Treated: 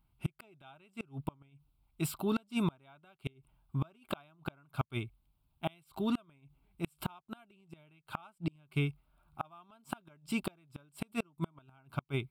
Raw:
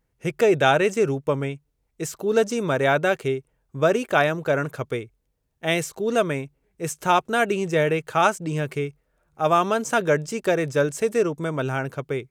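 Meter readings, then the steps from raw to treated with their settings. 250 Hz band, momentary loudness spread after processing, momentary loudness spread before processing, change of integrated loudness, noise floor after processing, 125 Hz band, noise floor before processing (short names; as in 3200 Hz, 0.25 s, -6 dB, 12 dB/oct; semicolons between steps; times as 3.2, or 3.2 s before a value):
-10.0 dB, 19 LU, 11 LU, -16.0 dB, -76 dBFS, -9.5 dB, -73 dBFS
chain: fixed phaser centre 1800 Hz, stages 6; flipped gate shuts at -22 dBFS, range -35 dB; gain +1 dB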